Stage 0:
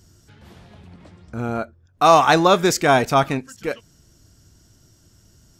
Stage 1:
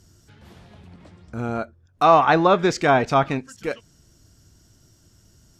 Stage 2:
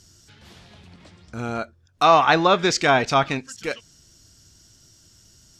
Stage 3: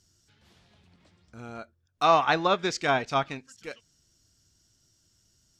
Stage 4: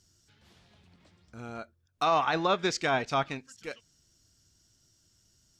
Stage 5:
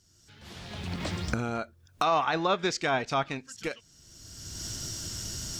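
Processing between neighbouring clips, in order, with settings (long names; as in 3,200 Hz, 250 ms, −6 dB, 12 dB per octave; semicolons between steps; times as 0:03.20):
treble cut that deepens with the level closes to 2,500 Hz, closed at −10.5 dBFS; level −1.5 dB
parametric band 4,800 Hz +10.5 dB 2.7 octaves; level −2.5 dB
expander for the loud parts 1.5 to 1, over −28 dBFS; level −5 dB
brickwall limiter −16 dBFS, peak gain reduction 8 dB
camcorder AGC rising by 29 dB per second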